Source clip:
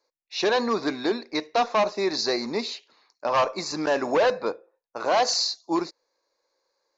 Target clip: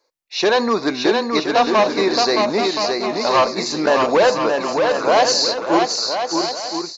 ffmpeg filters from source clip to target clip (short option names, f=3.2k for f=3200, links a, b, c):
-af "aecho=1:1:620|1023|1285|1455|1566:0.631|0.398|0.251|0.158|0.1,volume=6.5dB"